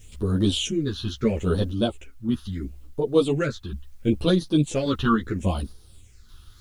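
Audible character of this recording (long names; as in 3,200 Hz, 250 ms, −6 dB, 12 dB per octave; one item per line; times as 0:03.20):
phaser sweep stages 6, 0.74 Hz, lowest notch 570–2,300 Hz
a quantiser's noise floor 12 bits, dither triangular
sample-and-hold tremolo
a shimmering, thickened sound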